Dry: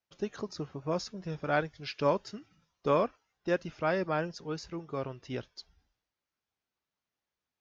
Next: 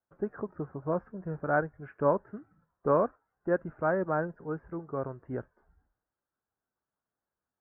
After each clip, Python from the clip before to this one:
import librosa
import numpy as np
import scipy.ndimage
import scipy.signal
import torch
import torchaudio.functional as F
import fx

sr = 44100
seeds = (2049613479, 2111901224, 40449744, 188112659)

y = scipy.signal.sosfilt(scipy.signal.ellip(4, 1.0, 60, 1600.0, 'lowpass', fs=sr, output='sos'), x)
y = F.gain(torch.from_numpy(y), 2.0).numpy()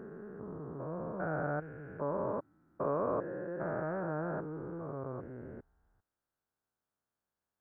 y = fx.spec_steps(x, sr, hold_ms=400)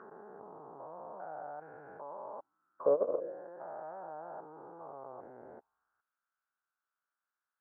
y = fx.level_steps(x, sr, step_db=16)
y = fx.auto_wah(y, sr, base_hz=510.0, top_hz=1400.0, q=4.3, full_db=-39.0, direction='down')
y = F.gain(torch.from_numpy(y), 13.0).numpy()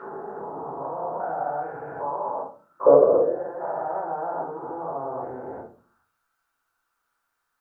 y = fx.room_shoebox(x, sr, seeds[0], volume_m3=250.0, walls='furnished', distance_m=4.4)
y = F.gain(torch.from_numpy(y), 7.0).numpy()